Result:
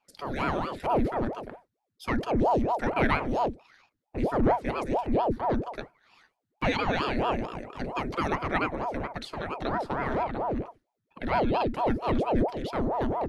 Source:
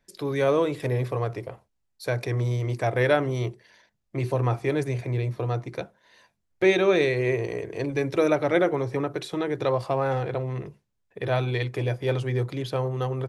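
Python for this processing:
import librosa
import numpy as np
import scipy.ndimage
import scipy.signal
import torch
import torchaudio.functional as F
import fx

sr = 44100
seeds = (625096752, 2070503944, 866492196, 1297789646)

y = fx.graphic_eq_31(x, sr, hz=(125, 1600, 4000), db=(11, 12, 6))
y = fx.ring_lfo(y, sr, carrier_hz=480.0, swing_pct=80, hz=4.4)
y = y * 10.0 ** (-5.0 / 20.0)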